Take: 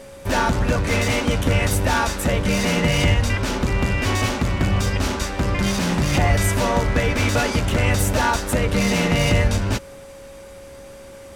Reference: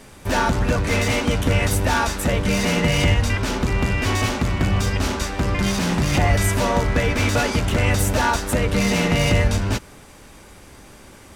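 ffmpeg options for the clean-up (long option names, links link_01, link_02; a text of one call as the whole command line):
ffmpeg -i in.wav -af "bandreject=frequency=550:width=30" out.wav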